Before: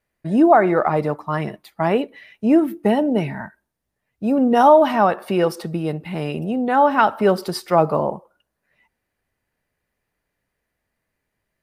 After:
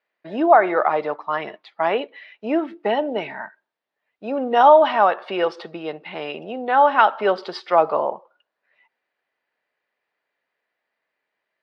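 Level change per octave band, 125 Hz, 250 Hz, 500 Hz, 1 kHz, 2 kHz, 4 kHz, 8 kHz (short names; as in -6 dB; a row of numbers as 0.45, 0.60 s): under -15 dB, -9.0 dB, -1.0 dB, +1.0 dB, +1.5 dB, +1.0 dB, n/a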